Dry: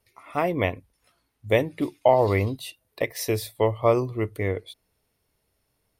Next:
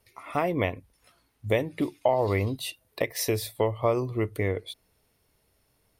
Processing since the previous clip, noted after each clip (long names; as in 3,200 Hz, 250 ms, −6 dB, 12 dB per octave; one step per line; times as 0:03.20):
downward compressor 2 to 1, threshold −31 dBFS, peak gain reduction 10.5 dB
level +4 dB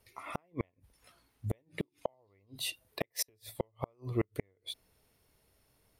gate with flip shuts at −18 dBFS, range −41 dB
level −1.5 dB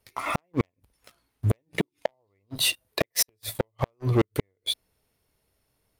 leveller curve on the samples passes 3
level +3.5 dB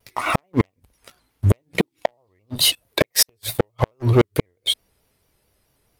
pitch modulation by a square or saw wave square 4.6 Hz, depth 100 cents
level +7 dB